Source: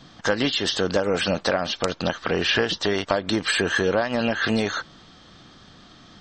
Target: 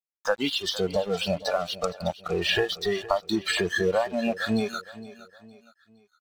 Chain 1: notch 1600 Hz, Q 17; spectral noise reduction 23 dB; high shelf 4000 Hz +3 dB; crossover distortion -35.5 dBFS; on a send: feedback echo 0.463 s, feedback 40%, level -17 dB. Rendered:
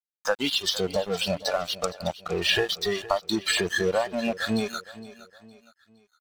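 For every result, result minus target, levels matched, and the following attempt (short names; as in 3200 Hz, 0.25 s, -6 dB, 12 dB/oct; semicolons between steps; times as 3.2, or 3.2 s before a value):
8000 Hz band +4.5 dB; crossover distortion: distortion +5 dB
notch 1600 Hz, Q 17; spectral noise reduction 23 dB; high shelf 4000 Hz -4.5 dB; crossover distortion -35.5 dBFS; on a send: feedback echo 0.463 s, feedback 40%, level -17 dB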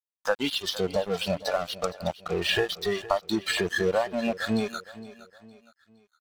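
crossover distortion: distortion +6 dB
notch 1600 Hz, Q 17; spectral noise reduction 23 dB; high shelf 4000 Hz -4.5 dB; crossover distortion -42 dBFS; on a send: feedback echo 0.463 s, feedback 40%, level -17 dB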